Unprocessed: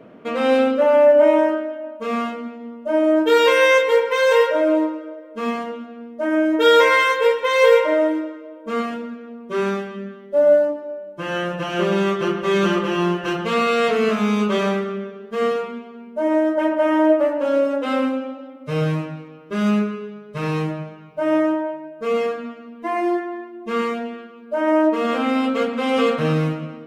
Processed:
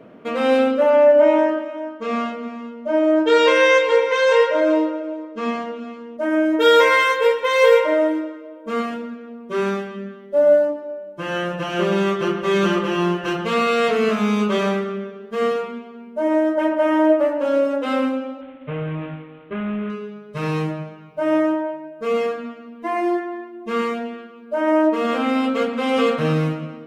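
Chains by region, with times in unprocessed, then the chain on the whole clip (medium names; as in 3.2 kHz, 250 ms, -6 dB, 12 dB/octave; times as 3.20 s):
0.90–6.17 s: low-pass 7.4 kHz 24 dB/octave + delay 389 ms -14.5 dB
18.41–19.90 s: CVSD coder 16 kbps + compression, threshold -22 dBFS
whole clip: none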